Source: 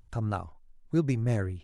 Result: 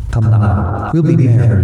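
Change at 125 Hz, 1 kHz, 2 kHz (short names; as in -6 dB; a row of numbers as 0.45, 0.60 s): +20.5, +17.5, +13.0 dB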